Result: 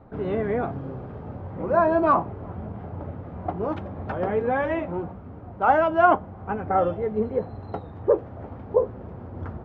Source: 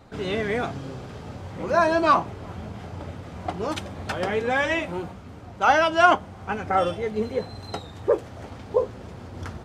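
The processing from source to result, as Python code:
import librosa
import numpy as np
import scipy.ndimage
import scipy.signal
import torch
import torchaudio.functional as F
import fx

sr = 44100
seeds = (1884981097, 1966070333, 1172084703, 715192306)

y = scipy.signal.sosfilt(scipy.signal.butter(2, 1100.0, 'lowpass', fs=sr, output='sos'), x)
y = y * 10.0 ** (1.5 / 20.0)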